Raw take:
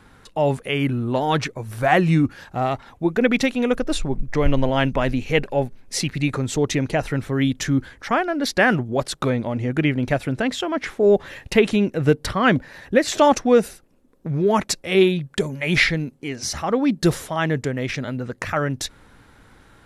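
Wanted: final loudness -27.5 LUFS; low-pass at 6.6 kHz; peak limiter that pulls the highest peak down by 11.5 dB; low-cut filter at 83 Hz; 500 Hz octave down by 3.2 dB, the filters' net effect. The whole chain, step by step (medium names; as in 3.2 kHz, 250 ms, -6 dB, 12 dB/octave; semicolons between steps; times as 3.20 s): high-pass 83 Hz; low-pass 6.6 kHz; peaking EQ 500 Hz -4 dB; trim -1.5 dB; peak limiter -17 dBFS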